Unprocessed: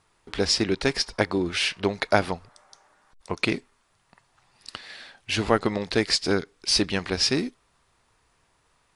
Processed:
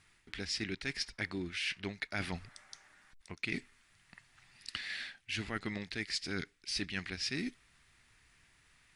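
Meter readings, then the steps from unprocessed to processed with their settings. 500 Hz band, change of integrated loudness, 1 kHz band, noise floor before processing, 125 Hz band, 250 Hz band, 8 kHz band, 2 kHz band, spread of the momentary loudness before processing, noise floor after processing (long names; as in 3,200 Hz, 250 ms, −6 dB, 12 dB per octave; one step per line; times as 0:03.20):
−20.5 dB, −13.5 dB, −19.0 dB, −67 dBFS, −12.0 dB, −13.5 dB, −14.0 dB, −9.0 dB, 14 LU, −69 dBFS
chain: octave-band graphic EQ 500/1,000/2,000 Hz −10/−9/+8 dB
reversed playback
downward compressor 5 to 1, threshold −36 dBFS, peak gain reduction 18 dB
reversed playback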